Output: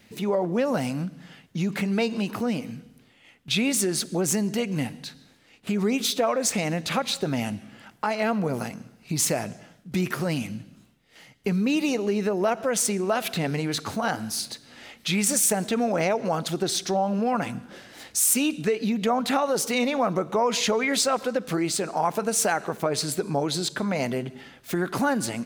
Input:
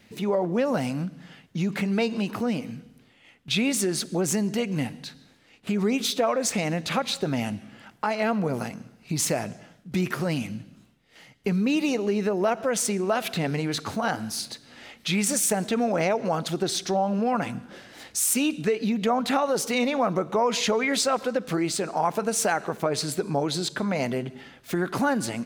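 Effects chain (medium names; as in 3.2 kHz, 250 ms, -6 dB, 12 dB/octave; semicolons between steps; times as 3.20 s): treble shelf 7.3 kHz +4.5 dB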